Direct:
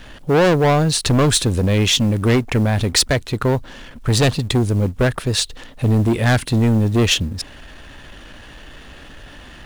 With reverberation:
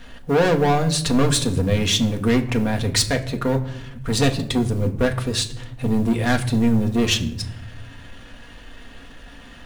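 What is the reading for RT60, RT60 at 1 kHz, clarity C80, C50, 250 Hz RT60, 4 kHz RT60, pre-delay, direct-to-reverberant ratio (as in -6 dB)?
0.75 s, 0.65 s, 16.5 dB, 14.5 dB, 1.4 s, 0.50 s, 4 ms, 2.0 dB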